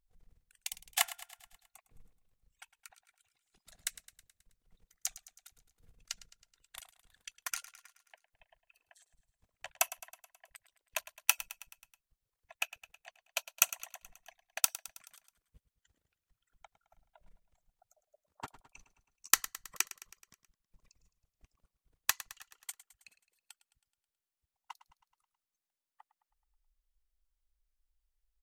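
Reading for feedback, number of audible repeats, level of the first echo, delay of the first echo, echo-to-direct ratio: 58%, 5, -16.0 dB, 0.107 s, -14.0 dB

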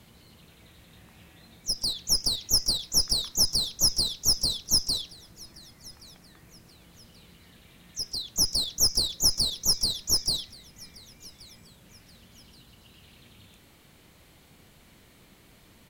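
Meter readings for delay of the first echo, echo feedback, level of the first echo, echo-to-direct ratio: 1.128 s, 35%, -23.5 dB, -23.0 dB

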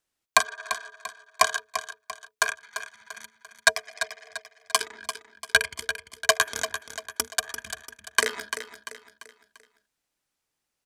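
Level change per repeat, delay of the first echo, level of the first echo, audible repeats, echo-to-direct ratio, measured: -7.5 dB, 0.343 s, -10.0 dB, 4, -9.0 dB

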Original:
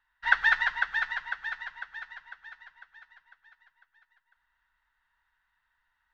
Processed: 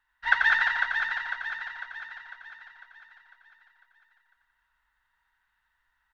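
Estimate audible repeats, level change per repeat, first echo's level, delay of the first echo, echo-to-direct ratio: 3, -4.5 dB, -5.0 dB, 88 ms, -3.5 dB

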